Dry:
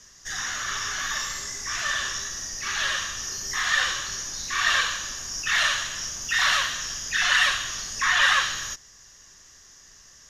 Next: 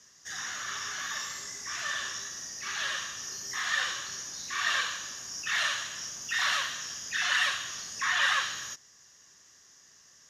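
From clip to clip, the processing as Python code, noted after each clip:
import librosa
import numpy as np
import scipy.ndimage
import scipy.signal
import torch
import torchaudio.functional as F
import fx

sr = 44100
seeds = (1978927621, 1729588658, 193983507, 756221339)

y = scipy.signal.sosfilt(scipy.signal.butter(2, 120.0, 'highpass', fs=sr, output='sos'), x)
y = F.gain(torch.from_numpy(y), -6.5).numpy()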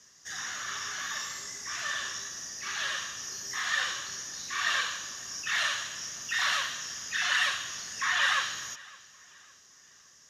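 y = fx.echo_feedback(x, sr, ms=560, feedback_pct=40, wet_db=-23)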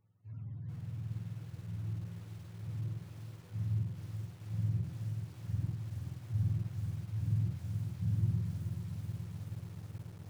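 y = fx.octave_mirror(x, sr, pivot_hz=440.0)
y = fx.echo_crushed(y, sr, ms=429, feedback_pct=80, bits=8, wet_db=-6.0)
y = F.gain(torch.from_numpy(y), -8.5).numpy()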